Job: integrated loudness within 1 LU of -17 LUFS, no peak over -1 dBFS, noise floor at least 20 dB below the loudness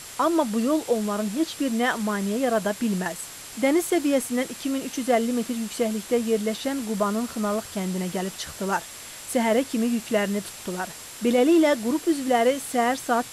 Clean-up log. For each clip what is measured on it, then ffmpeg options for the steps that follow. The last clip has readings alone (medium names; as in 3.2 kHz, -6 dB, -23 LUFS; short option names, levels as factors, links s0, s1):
steady tone 7.6 kHz; tone level -47 dBFS; noise floor -41 dBFS; noise floor target -45 dBFS; loudness -24.5 LUFS; peak level -10.5 dBFS; loudness target -17.0 LUFS
-> -af "bandreject=f=7600:w=30"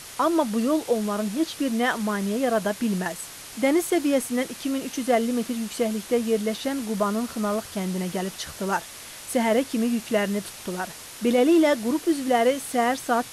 steady tone not found; noise floor -41 dBFS; noise floor target -45 dBFS
-> -af "afftdn=nr=6:nf=-41"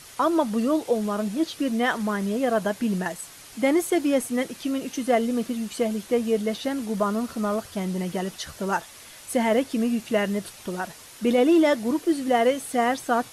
noise floor -46 dBFS; loudness -25.0 LUFS; peak level -11.0 dBFS; loudness target -17.0 LUFS
-> -af "volume=2.51"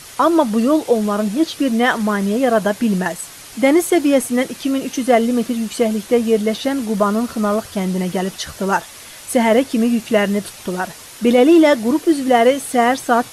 loudness -17.0 LUFS; peak level -3.0 dBFS; noise floor -38 dBFS